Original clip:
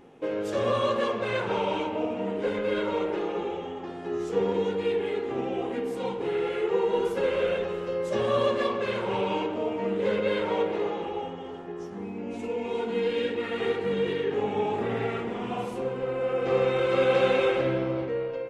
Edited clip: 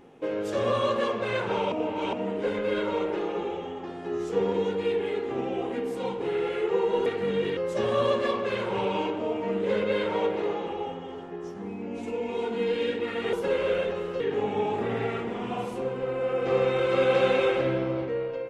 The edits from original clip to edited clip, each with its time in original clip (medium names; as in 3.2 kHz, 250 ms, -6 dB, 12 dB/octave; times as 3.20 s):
1.72–2.13 s: reverse
7.06–7.93 s: swap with 13.69–14.20 s